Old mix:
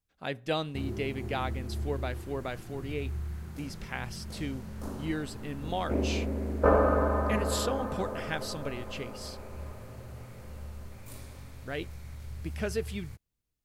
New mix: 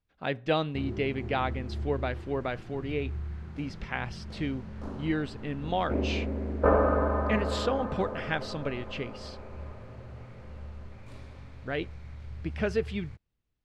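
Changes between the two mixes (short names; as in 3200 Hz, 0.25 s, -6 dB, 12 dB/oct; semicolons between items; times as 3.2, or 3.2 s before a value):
speech +4.0 dB; master: add LPF 3500 Hz 12 dB/oct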